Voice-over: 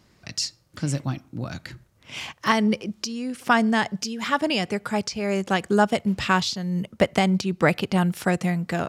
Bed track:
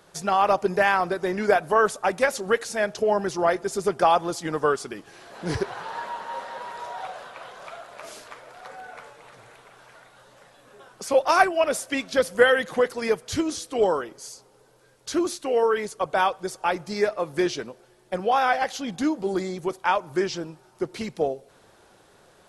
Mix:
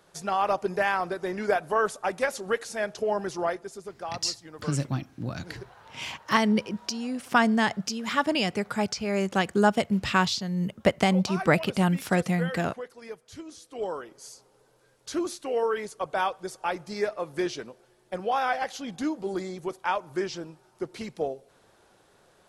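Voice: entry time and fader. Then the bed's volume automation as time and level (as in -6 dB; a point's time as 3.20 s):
3.85 s, -2.0 dB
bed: 3.41 s -5 dB
3.91 s -17 dB
13.41 s -17 dB
14.27 s -5 dB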